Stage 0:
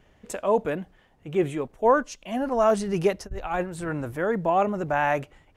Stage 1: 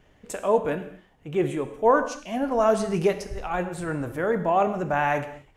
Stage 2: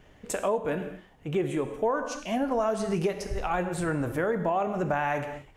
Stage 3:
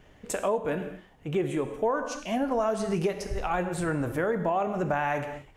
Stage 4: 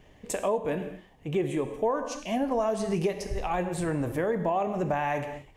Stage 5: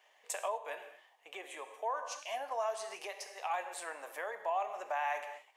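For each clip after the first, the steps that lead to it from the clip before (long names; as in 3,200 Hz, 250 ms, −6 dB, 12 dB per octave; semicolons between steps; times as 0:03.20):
reverb whose tail is shaped and stops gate 280 ms falling, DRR 8 dB
downward compressor 6 to 1, threshold −27 dBFS, peak gain reduction 13 dB; level +3 dB
no processing that can be heard
parametric band 1,400 Hz −11.5 dB 0.23 octaves
high-pass filter 690 Hz 24 dB per octave; level −4 dB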